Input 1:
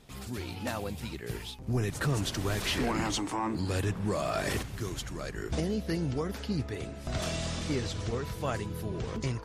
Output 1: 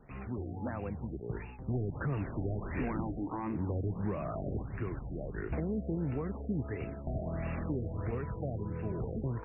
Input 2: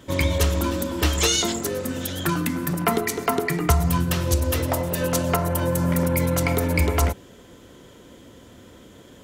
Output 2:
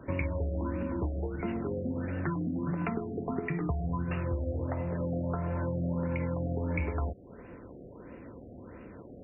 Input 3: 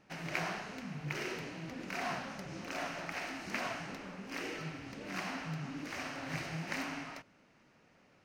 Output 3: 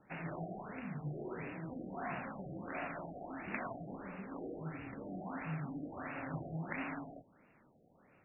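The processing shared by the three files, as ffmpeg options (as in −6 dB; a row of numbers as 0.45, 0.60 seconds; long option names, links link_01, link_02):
-filter_complex "[0:a]acrossover=split=280|3400[link_01][link_02][link_03];[link_01]acompressor=threshold=-32dB:ratio=4[link_04];[link_02]acompressor=threshold=-38dB:ratio=4[link_05];[link_03]acompressor=threshold=-34dB:ratio=4[link_06];[link_04][link_05][link_06]amix=inputs=3:normalize=0,afftfilt=real='re*lt(b*sr/1024,750*pow(2900/750,0.5+0.5*sin(2*PI*1.5*pts/sr)))':imag='im*lt(b*sr/1024,750*pow(2900/750,0.5+0.5*sin(2*PI*1.5*pts/sr)))':win_size=1024:overlap=0.75"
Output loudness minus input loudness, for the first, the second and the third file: −4.0, −10.5, −3.5 LU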